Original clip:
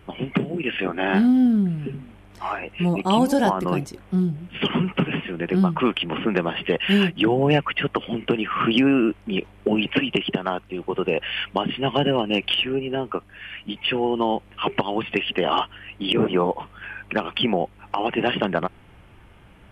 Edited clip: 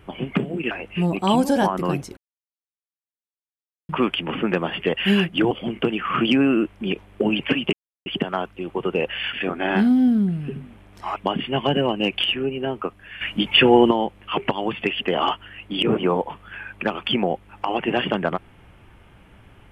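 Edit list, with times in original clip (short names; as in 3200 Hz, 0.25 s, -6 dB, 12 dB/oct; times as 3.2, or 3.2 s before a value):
0.71–2.54 move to 11.46
4–5.72 mute
7.34–7.97 cut
10.19 insert silence 0.33 s
13.51–14.21 gain +9 dB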